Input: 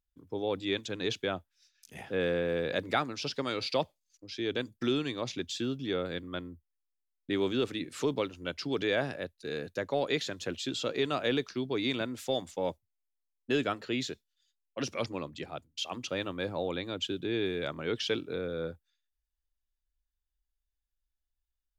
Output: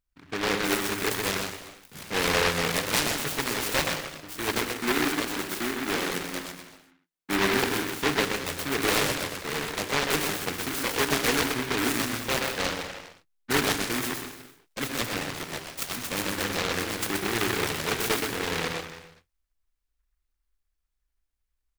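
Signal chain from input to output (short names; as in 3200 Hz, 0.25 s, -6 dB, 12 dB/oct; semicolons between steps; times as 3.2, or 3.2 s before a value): 4.54–7.39 elliptic high-pass 160 Hz; echo 0.125 s -4.5 dB; non-linear reverb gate 0.42 s falling, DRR 3.5 dB; noise-modulated delay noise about 1500 Hz, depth 0.37 ms; gain +2.5 dB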